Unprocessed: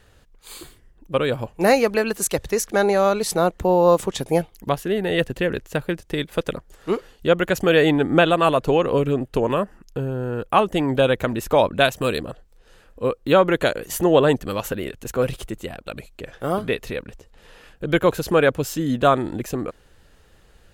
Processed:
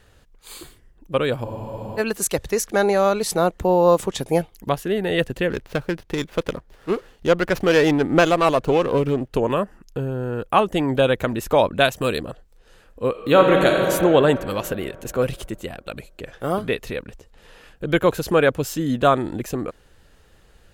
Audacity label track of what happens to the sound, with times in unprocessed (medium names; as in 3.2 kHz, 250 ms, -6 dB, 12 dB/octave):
1.460000	1.460000	spectral freeze 0.52 s
5.500000	9.310000	sliding maximum over 5 samples
13.100000	13.820000	reverb throw, RT60 3 s, DRR 0 dB